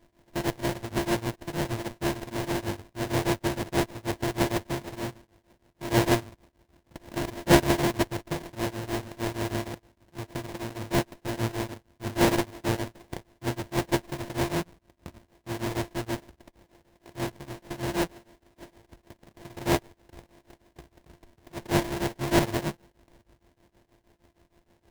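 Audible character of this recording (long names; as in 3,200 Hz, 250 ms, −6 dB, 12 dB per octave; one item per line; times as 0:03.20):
a buzz of ramps at a fixed pitch in blocks of 128 samples
tremolo triangle 6.4 Hz, depth 95%
aliases and images of a low sample rate 1,300 Hz, jitter 20%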